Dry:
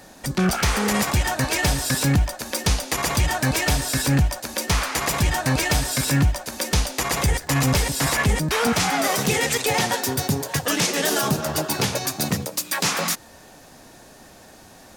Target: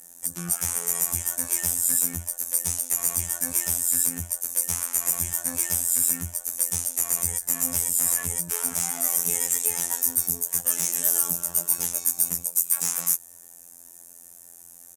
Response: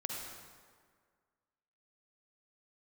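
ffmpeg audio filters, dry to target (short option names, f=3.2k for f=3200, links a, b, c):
-filter_complex "[0:a]aresample=32000,aresample=44100,afftfilt=real='hypot(re,im)*cos(PI*b)':imag='0':win_size=2048:overlap=0.75,acrossover=split=3400[a][b];[b]volume=12dB,asoftclip=hard,volume=-12dB[c];[a][c]amix=inputs=2:normalize=0,aexciter=amount=12.4:drive=7.7:freq=6.5k,volume=-13dB"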